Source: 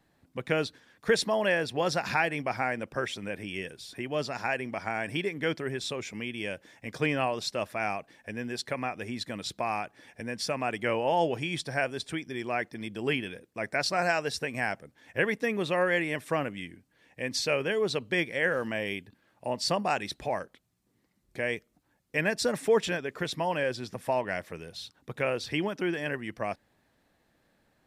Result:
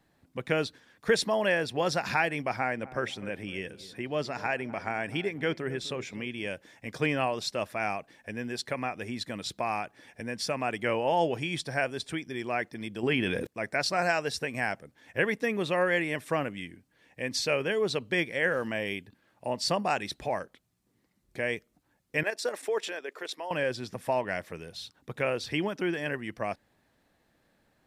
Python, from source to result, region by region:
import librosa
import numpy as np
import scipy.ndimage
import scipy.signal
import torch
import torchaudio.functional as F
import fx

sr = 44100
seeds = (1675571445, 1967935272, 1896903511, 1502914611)

y = fx.chain(x, sr, fx.high_shelf(hz=5500.0, db=-5.5),
    fx.echo_filtered(ms=253, feedback_pct=47, hz=820.0, wet_db=-15.0), at=(2.56, 6.47))
y = fx.chain(y, sr, fx.high_shelf(hz=4700.0, db=-6.5),
    fx.env_flatten(amount_pct=70), at=(13.03, 13.47))
y = fx.chain(y, sr, fx.highpass(hz=340.0, slope=24),
    fx.level_steps(step_db=9), at=(22.23, 23.51))